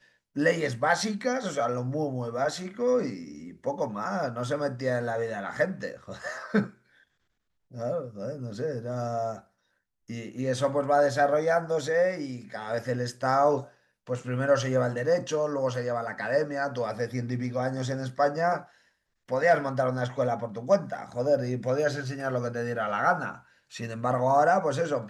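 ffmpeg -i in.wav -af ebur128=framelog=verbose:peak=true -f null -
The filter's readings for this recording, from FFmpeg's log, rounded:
Integrated loudness:
  I:         -28.1 LUFS
  Threshold: -38.5 LUFS
Loudness range:
  LRA:         6.3 LU
  Threshold: -48.9 LUFS
  LRA low:   -33.4 LUFS
  LRA high:  -27.1 LUFS
True peak:
  Peak:      -10.3 dBFS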